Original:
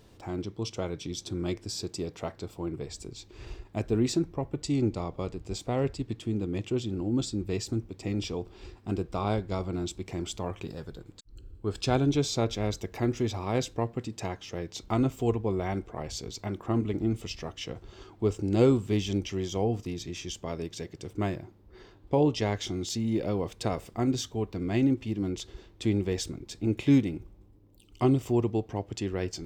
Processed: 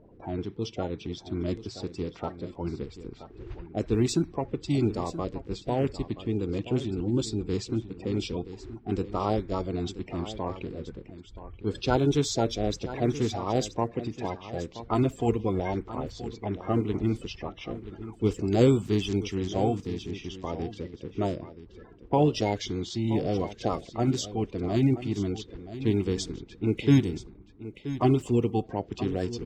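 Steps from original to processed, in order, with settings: coarse spectral quantiser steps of 30 dB; level-controlled noise filter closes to 1.3 kHz, open at -23.5 dBFS; on a send: delay 977 ms -13.5 dB; on the sum: trim +2 dB

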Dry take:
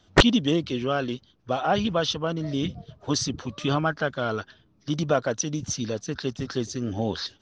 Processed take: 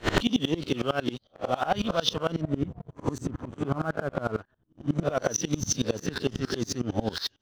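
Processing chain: reverse spectral sustain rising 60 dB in 0.38 s; 2.41–5.03 s: FFT filter 100 Hz 0 dB, 1.2 kHz -3 dB, 5.1 kHz -29 dB, 7.9 kHz -2 dB; waveshaping leveller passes 2; compression 6:1, threshold -16 dBFS, peak gain reduction 10 dB; sawtooth tremolo in dB swelling 11 Hz, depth 24 dB

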